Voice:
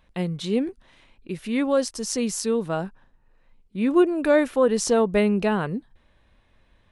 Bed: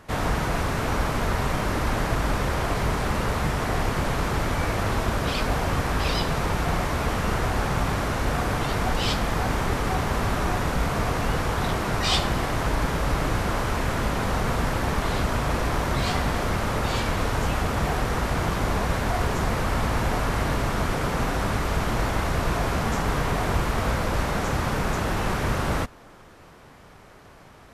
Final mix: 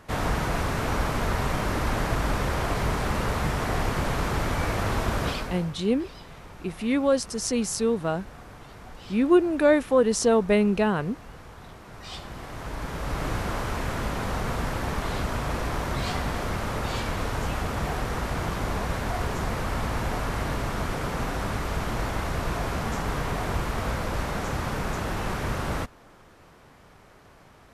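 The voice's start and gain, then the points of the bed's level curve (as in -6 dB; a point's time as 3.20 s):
5.35 s, -0.5 dB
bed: 5.27 s -1.5 dB
5.77 s -20 dB
11.82 s -20 dB
13.28 s -4 dB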